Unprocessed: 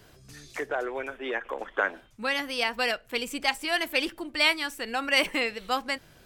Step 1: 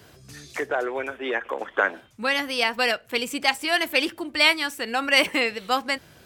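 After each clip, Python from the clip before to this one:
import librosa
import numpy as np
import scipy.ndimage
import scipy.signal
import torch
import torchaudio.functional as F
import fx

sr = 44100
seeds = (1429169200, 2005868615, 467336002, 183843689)

y = scipy.signal.sosfilt(scipy.signal.butter(4, 58.0, 'highpass', fs=sr, output='sos'), x)
y = y * librosa.db_to_amplitude(4.5)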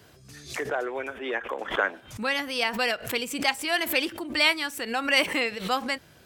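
y = fx.pre_swell(x, sr, db_per_s=120.0)
y = y * librosa.db_to_amplitude(-3.5)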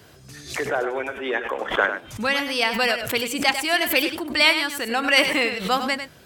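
y = x + 10.0 ** (-9.0 / 20.0) * np.pad(x, (int(99 * sr / 1000.0), 0))[:len(x)]
y = y * librosa.db_to_amplitude(4.5)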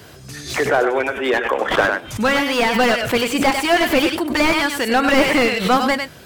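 y = fx.slew_limit(x, sr, full_power_hz=120.0)
y = y * librosa.db_to_amplitude(8.0)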